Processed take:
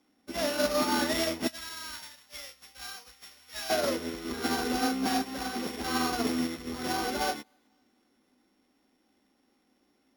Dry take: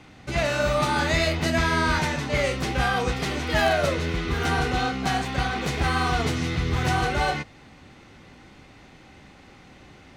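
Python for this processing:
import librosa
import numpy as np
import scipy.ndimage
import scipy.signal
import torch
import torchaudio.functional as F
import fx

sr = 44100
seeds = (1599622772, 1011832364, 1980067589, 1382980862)

y = np.r_[np.sort(x[:len(x) // 8 * 8].reshape(-1, 8), axis=1).ravel(), x[len(x) // 8 * 8:]]
y = fx.tone_stack(y, sr, knobs='10-0-10', at=(1.47, 3.7))
y = 10.0 ** (-20.5 / 20.0) * np.tanh(y / 10.0 ** (-20.5 / 20.0))
y = fx.low_shelf_res(y, sr, hz=180.0, db=-10.5, q=3.0)
y = fx.echo_thinned(y, sr, ms=253, feedback_pct=55, hz=420.0, wet_db=-20.0)
y = fx.upward_expand(y, sr, threshold_db=-38.0, expansion=2.5)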